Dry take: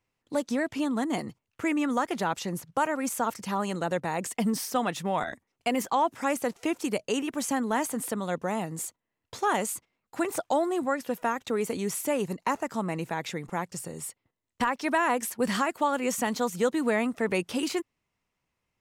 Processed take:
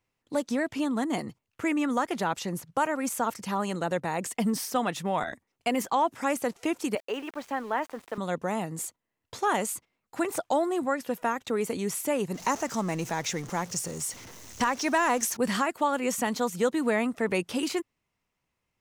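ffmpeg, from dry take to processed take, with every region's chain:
ffmpeg -i in.wav -filter_complex "[0:a]asettb=1/sr,asplit=3[link_01][link_02][link_03];[link_01]atrim=end=6.954[link_04];[link_02]atrim=start=6.95:end=8.18,asetpts=PTS-STARTPTS,afade=type=in:duration=0.004:curve=qsin,afade=type=out:start_time=1.226:duration=0.004:curve=qsin,highpass=420,lowpass=2500,aeval=exprs='val(0)*gte(abs(val(0)),0.00447)':channel_layout=same[link_05];[link_03]atrim=start=8.176[link_06];[link_04][link_05]acrossfade=duration=0.004:curve1=hsin:curve2=qsin[link_07];[link_07][link_06]acrossfade=duration=0.004:curve1=qsin:curve2=hsin,asettb=1/sr,asplit=3[link_08][link_09][link_10];[link_08]atrim=end=12.344[link_11];[link_09]atrim=start=12.34:end=15.37,asetpts=PTS-STARTPTS,afade=type=in:duration=0.004:curve=qsin,afade=type=out:start_time=3.026:duration=0.004:curve=qsin,aeval=exprs='val(0)+0.5*0.00944*sgn(val(0))':channel_layout=same,equalizer=frequency=6100:width=2.7:gain=12[link_12];[link_10]atrim=start=15.366[link_13];[link_11][link_12]acrossfade=duration=0.004:curve1=hsin:curve2=qsin[link_14];[link_14][link_13]acrossfade=duration=0.004:curve1=qsin:curve2=hsin" out.wav

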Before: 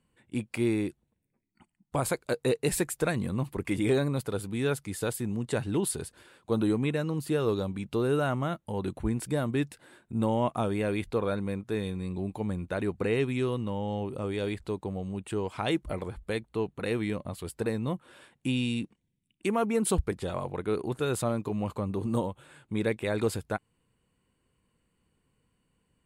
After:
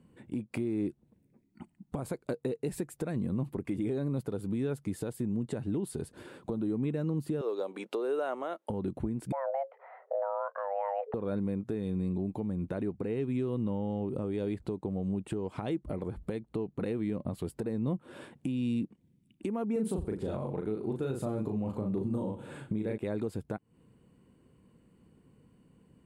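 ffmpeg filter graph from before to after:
ffmpeg -i in.wav -filter_complex "[0:a]asettb=1/sr,asplit=3[link_01][link_02][link_03];[link_01]atrim=end=7.414[link_04];[link_02]atrim=start=7.41:end=8.7,asetpts=PTS-STARTPTS,afade=type=in:duration=0.004:curve=qsin,afade=type=out:start_time=1.286:duration=0.004:curve=qsin,highpass=frequency=430:width=0.5412,highpass=frequency=430:width=1.3066,highshelf=frequency=10000:gain=-6[link_05];[link_03]atrim=start=8.696[link_06];[link_04][link_05]acrossfade=duration=0.004:curve1=hsin:curve2=qsin[link_07];[link_07][link_06]acrossfade=duration=0.004:curve1=qsin:curve2=hsin,asettb=1/sr,asplit=3[link_08][link_09][link_10];[link_08]atrim=end=9.324[link_11];[link_09]atrim=start=9.32:end=11.14,asetpts=PTS-STARTPTS,afade=type=in:duration=0.004:curve=qsin,afade=type=out:start_time=1.816:duration=0.004:curve=qsin,lowpass=frequency=1500:width=0.5412,lowpass=frequency=1500:width=1.3066,afreqshift=400[link_12];[link_10]atrim=start=11.136[link_13];[link_11][link_12]acrossfade=duration=0.004:curve1=hsin:curve2=qsin[link_14];[link_14][link_13]acrossfade=duration=0.004:curve1=qsin:curve2=hsin,asettb=1/sr,asplit=3[link_15][link_16][link_17];[link_15]atrim=end=19.724[link_18];[link_16]atrim=start=19.72:end=22.98,asetpts=PTS-STARTPTS,afade=type=in:duration=0.004:curve=qsin,afade=type=out:start_time=3.256:duration=0.004:curve=qsin,bandreject=frequency=1100:width=17,asplit=2[link_19][link_20];[link_20]adelay=37,volume=-3dB[link_21];[link_19][link_21]amix=inputs=2:normalize=0,atrim=end_sample=143766,aecho=1:1:91|182|273:0.112|0.0393|0.0137,atrim=end_sample=143766[link_22];[link_17]atrim=start=22.976[link_23];[link_18][link_22]acrossfade=duration=0.004:curve1=hsin:curve2=qsin[link_24];[link_24][link_23]acrossfade=duration=0.004:curve1=qsin:curve2=hsin,equalizer=frequency=230:width=0.32:gain=15,acompressor=threshold=-28dB:ratio=5,alimiter=limit=-23.5dB:level=0:latency=1:release=289" out.wav

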